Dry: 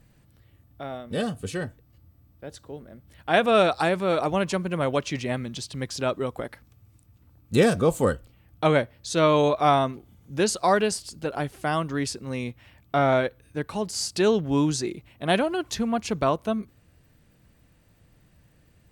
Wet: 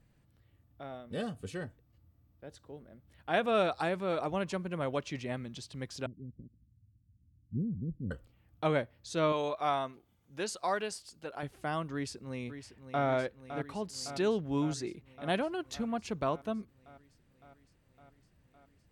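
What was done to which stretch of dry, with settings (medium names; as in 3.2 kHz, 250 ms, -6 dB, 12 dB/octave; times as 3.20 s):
6.06–8.11 s: inverse Chebyshev low-pass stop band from 820 Hz, stop band 60 dB
9.32–11.43 s: bass shelf 360 Hz -10.5 dB
11.93–13.05 s: echo throw 560 ms, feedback 75%, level -10 dB
whole clip: treble shelf 5.6 kHz -5.5 dB; trim -9 dB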